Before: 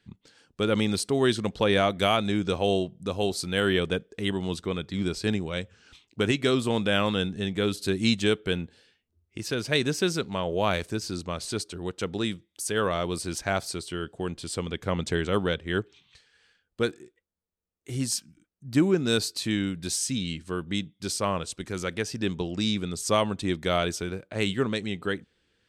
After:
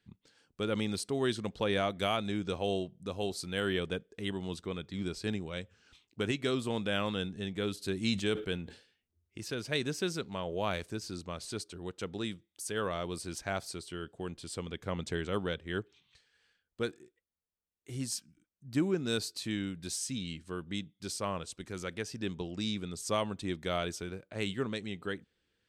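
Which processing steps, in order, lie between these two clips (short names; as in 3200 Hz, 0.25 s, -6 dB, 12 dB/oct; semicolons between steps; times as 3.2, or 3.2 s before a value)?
7.88–9.52 sustainer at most 120 dB/s; gain -8 dB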